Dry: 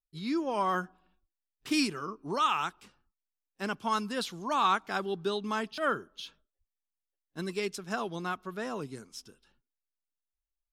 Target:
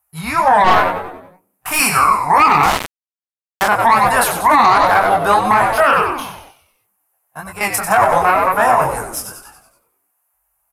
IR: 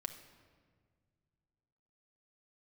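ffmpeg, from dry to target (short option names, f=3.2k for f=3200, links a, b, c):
-filter_complex "[0:a]firequalizer=gain_entry='entry(100,0);entry(310,-22);entry(740,14);entry(3300,-17);entry(11000,14)':delay=0.05:min_phase=1,asettb=1/sr,asplit=3[a][b][c];[a]atrim=end=6.084[d];[b]atrim=start=6.08:end=7.61,asetpts=PTS-STARTPTS,afade=t=in:d=0.004:c=qsin,afade=t=out:st=1.526:d=0.004:c=qsin,acrossover=split=150[e][f];[f]acompressor=threshold=-54dB:ratio=3[g];[e][g]amix=inputs=2:normalize=0[h];[c]atrim=start=7.606[i];[d][h]acrossfade=d=0.004:c1=hsin:c2=qsin[j];[j][i]acrossfade=d=0.004:c1=qsin:c2=hsin,equalizer=f=2.8k:t=o:w=0.67:g=8,aeval=exprs='0.562*(cos(1*acos(clip(val(0)/0.562,-1,1)))-cos(1*PI/2))+0.0708*(cos(6*acos(clip(val(0)/0.562,-1,1)))-cos(6*PI/2))':c=same,highpass=f=60:w=0.5412,highpass=f=60:w=1.3066,acompressor=threshold=-27dB:ratio=2,flanger=delay=19:depth=6.1:speed=2,asplit=7[k][l][m][n][o][p][q];[l]adelay=94,afreqshift=-93,volume=-8dB[r];[m]adelay=188,afreqshift=-186,volume=-13.8dB[s];[n]adelay=282,afreqshift=-279,volume=-19.7dB[t];[o]adelay=376,afreqshift=-372,volume=-25.5dB[u];[p]adelay=470,afreqshift=-465,volume=-31.4dB[v];[q]adelay=564,afreqshift=-558,volume=-37.2dB[w];[k][r][s][t][u][v][w]amix=inputs=7:normalize=0,asettb=1/sr,asplit=3[x][y][z];[x]atrim=end=2.634[aa];[y]atrim=start=2.63:end=3.68,asetpts=PTS-STARTPTS,afade=t=in:d=0.004:c=qsin,afade=t=out:st=1.046:d=0.004:c=qsin,aeval=exprs='val(0)*gte(abs(val(0)),0.0178)':c=same[ab];[z]atrim=start=3.676[ac];[aa][ab]acrossfade=d=0.004:c1=hsin:c2=qsin[ad];[ad][ac]acrossfade=d=0.004:c1=qsin:c2=hsin,aresample=32000,aresample=44100,asettb=1/sr,asplit=3[ae][af][ag];[ae]atrim=end=0.644[ah];[af]atrim=start=0.64:end=1.8,asetpts=PTS-STARTPTS,afade=t=in:d=0.004:c=qsin,afade=t=out:st=1.156:d=0.004:c=qsin,aeval=exprs='(tanh(22.4*val(0)+0.65)-tanh(0.65))/22.4':c=same[ai];[ag]atrim=start=1.796[aj];[ah][ai]acrossfade=d=0.004:c1=hsin:c2=qsin[ak];[ak][aj]acrossfade=d=0.004:c1=qsin:c2=hsin,alimiter=level_in=24.5dB:limit=-1dB:release=50:level=0:latency=1,volume=-1dB"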